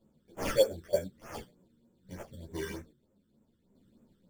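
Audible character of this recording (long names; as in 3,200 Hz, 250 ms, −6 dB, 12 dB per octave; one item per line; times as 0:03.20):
aliases and images of a low sample rate 3,900 Hz, jitter 0%
phaser sweep stages 12, 3.3 Hz, lowest notch 710–4,400 Hz
sample-and-hold tremolo 2.4 Hz
a shimmering, thickened sound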